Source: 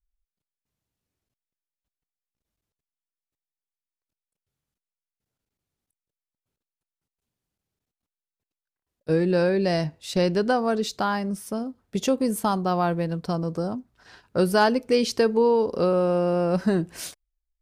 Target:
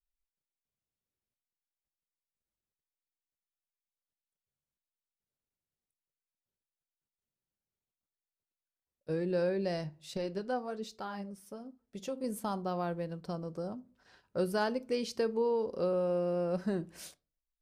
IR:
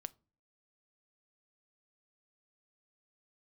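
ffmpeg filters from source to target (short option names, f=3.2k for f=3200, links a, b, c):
-filter_complex "[1:a]atrim=start_sample=2205[a];[0:a][a]afir=irnorm=-1:irlink=0,asettb=1/sr,asplit=3[b][c][d];[b]atrim=end=10.174[e];[c]atrim=start=10.17:end=12.24,asetpts=PTS-STARTPTS,afade=t=in:d=0.004:c=qsin,afade=t=out:st=2.066:d=0.004:c=qsin,flanger=delay=2.2:depth=5.9:regen=48:speed=1.2:shape=sinusoidal[f];[d]atrim=start=12.236[g];[e][f]acrossfade=d=0.004:c1=hsin:c2=qsin[h];[h][g]acrossfade=d=0.004:c1=qsin:c2=hsin,equalizer=f=530:t=o:w=0.49:g=4,volume=-8.5dB"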